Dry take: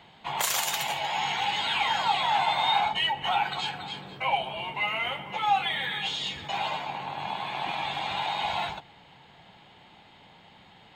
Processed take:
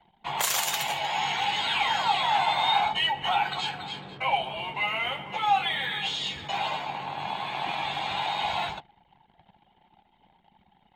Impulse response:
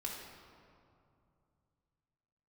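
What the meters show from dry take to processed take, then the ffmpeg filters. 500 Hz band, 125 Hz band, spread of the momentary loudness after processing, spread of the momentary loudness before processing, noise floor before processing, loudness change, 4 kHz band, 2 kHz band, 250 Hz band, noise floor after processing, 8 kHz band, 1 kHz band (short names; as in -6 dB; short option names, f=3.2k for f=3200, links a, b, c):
+0.5 dB, +0.5 dB, 9 LU, 9 LU, -55 dBFS, +1.0 dB, +1.0 dB, +0.5 dB, +0.5 dB, -65 dBFS, +1.0 dB, +1.0 dB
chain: -filter_complex "[0:a]asplit=2[a][b];[b]highshelf=f=2.4k:g=4.5[c];[1:a]atrim=start_sample=2205,afade=t=out:st=0.29:d=0.01,atrim=end_sample=13230,atrim=end_sample=3528[d];[c][d]afir=irnorm=-1:irlink=0,volume=-18dB[e];[a][e]amix=inputs=2:normalize=0,anlmdn=0.01"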